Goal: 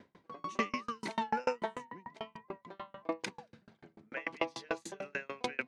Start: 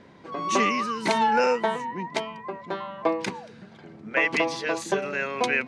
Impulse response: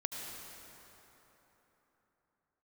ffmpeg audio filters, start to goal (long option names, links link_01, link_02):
-af "aeval=exprs='val(0)*pow(10,-35*if(lt(mod(6.8*n/s,1),2*abs(6.8)/1000),1-mod(6.8*n/s,1)/(2*abs(6.8)/1000),(mod(6.8*n/s,1)-2*abs(6.8)/1000)/(1-2*abs(6.8)/1000))/20)':channel_layout=same,volume=-3.5dB"